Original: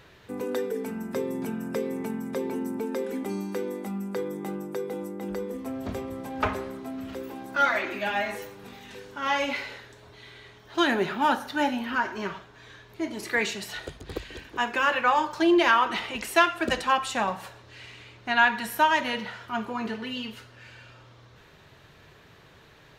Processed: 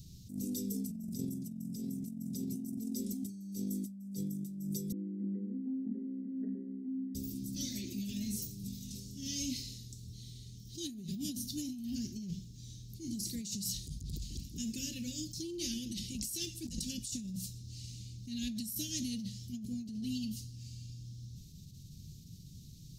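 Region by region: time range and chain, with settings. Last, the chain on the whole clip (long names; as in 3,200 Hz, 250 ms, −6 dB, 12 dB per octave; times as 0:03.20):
0:04.92–0:07.15: variable-slope delta modulation 32 kbit/s + linear-phase brick-wall band-pass 200–2,000 Hz
whole clip: elliptic band-stop filter 200–5,300 Hz, stop band 80 dB; compressor whose output falls as the input rises −44 dBFS, ratio −1; level that may rise only so fast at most 130 dB per second; level +5.5 dB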